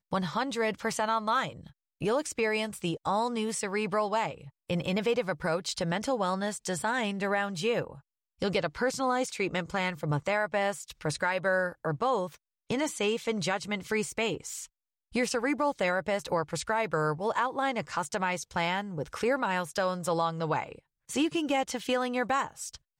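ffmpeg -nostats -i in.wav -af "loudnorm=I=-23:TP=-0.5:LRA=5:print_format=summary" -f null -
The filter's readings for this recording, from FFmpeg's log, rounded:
Input Integrated:    -30.3 LUFS
Input True Peak:     -15.1 dBTP
Input LRA:             0.9 LU
Input Threshold:     -40.6 LUFS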